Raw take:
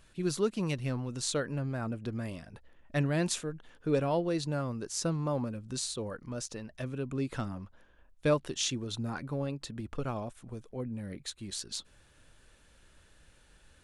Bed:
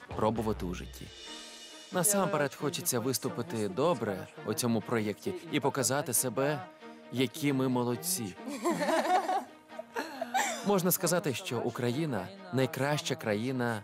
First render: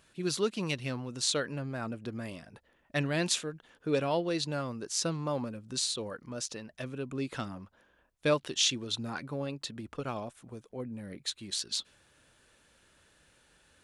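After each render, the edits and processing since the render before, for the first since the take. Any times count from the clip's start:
high-pass filter 170 Hz 6 dB per octave
dynamic equaliser 3,500 Hz, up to +7 dB, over −51 dBFS, Q 0.76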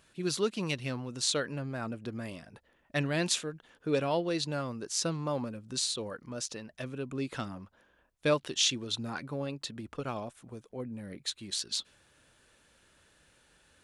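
no processing that can be heard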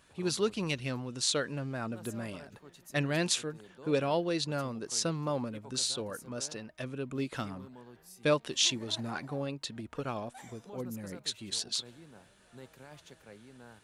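mix in bed −21.5 dB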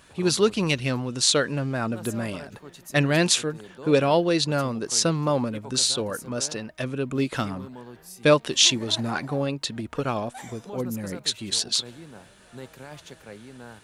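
level +9.5 dB
brickwall limiter −2 dBFS, peak gain reduction 1 dB

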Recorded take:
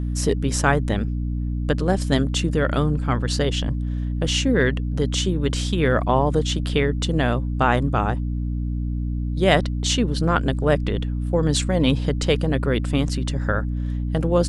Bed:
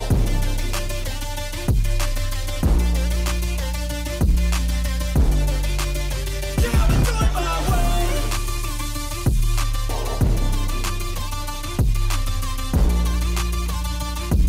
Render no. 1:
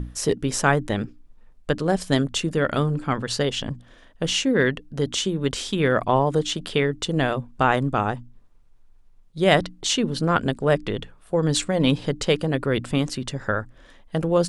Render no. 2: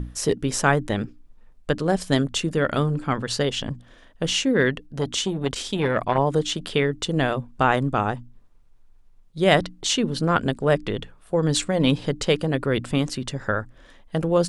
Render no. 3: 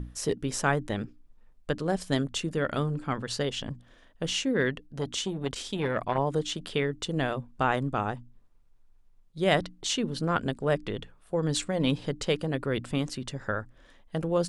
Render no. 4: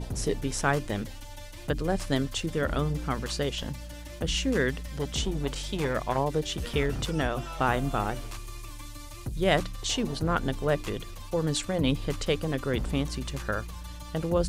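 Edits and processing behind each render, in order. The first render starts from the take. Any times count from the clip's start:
mains-hum notches 60/120/180/240/300 Hz
0:04.85–0:06.18: saturating transformer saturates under 560 Hz
level −6.5 dB
mix in bed −16 dB

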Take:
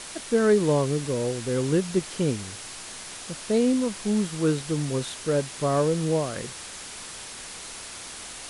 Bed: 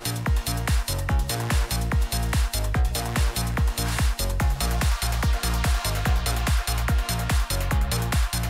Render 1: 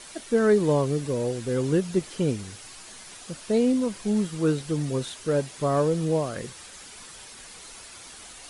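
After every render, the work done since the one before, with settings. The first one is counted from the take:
broadband denoise 8 dB, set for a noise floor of −40 dBFS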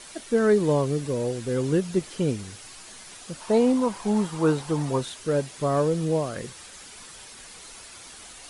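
0:03.40–0:05.01: parametric band 910 Hz +14 dB 0.87 octaves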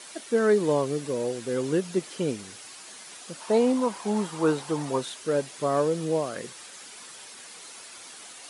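Bessel high-pass filter 250 Hz, order 2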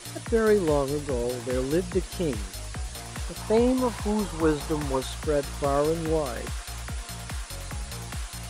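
mix in bed −12 dB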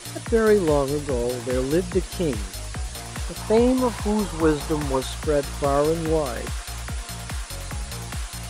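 level +3.5 dB

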